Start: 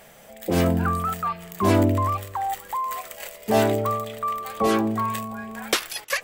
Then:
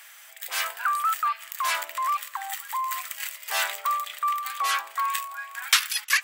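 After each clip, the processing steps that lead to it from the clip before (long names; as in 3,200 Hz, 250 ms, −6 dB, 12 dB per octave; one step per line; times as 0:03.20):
inverse Chebyshev high-pass filter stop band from 200 Hz, stop band 80 dB
level +4.5 dB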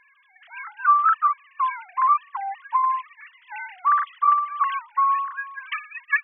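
three sine waves on the formant tracks
level +4.5 dB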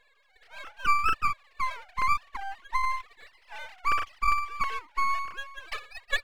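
half-wave rectification
level −2.5 dB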